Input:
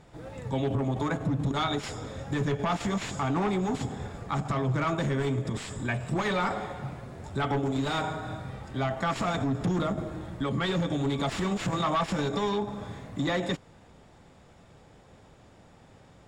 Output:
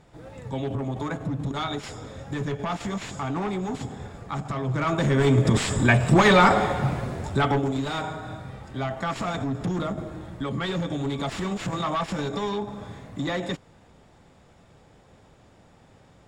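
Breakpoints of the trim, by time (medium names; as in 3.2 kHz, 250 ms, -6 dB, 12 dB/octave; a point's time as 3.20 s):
4.59 s -1 dB
5.48 s +12 dB
7.06 s +12 dB
7.88 s 0 dB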